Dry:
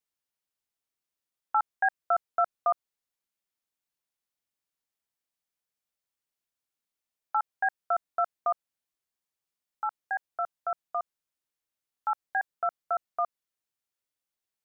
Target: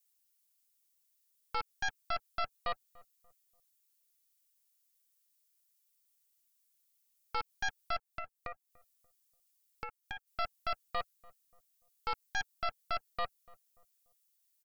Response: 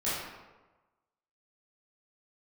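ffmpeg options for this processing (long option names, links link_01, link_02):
-filter_complex "[0:a]aderivative,aecho=1:1:6.9:0.4,asplit=3[link_01][link_02][link_03];[link_01]afade=type=out:start_time=7.96:duration=0.02[link_04];[link_02]acompressor=threshold=-55dB:ratio=5,afade=type=in:start_time=7.96:duration=0.02,afade=type=out:start_time=10.26:duration=0.02[link_05];[link_03]afade=type=in:start_time=10.26:duration=0.02[link_06];[link_04][link_05][link_06]amix=inputs=3:normalize=0,alimiter=level_in=16.5dB:limit=-24dB:level=0:latency=1:release=99,volume=-16.5dB,aeval=exprs='0.01*(cos(1*acos(clip(val(0)/0.01,-1,1)))-cos(1*PI/2))+0.000891*(cos(3*acos(clip(val(0)/0.01,-1,1)))-cos(3*PI/2))+0.00316*(cos(4*acos(clip(val(0)/0.01,-1,1)))-cos(4*PI/2))':channel_layout=same,asplit=2[link_07][link_08];[link_08]adelay=291,lowpass=frequency=950:poles=1,volume=-21dB,asplit=2[link_09][link_10];[link_10]adelay=291,lowpass=frequency=950:poles=1,volume=0.4,asplit=2[link_11][link_12];[link_12]adelay=291,lowpass=frequency=950:poles=1,volume=0.4[link_13];[link_07][link_09][link_11][link_13]amix=inputs=4:normalize=0,volume=13dB"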